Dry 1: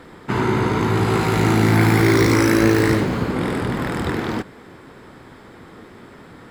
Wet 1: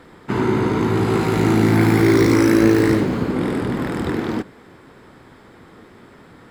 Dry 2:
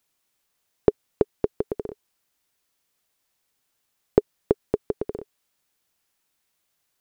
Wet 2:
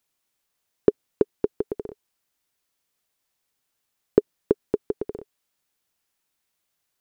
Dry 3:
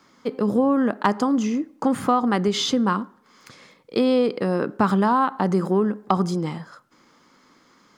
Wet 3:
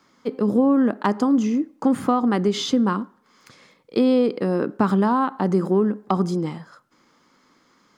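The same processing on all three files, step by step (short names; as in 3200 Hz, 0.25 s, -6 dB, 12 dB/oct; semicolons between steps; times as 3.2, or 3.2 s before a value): dynamic EQ 290 Hz, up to +6 dB, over -30 dBFS, Q 0.89; gain -3 dB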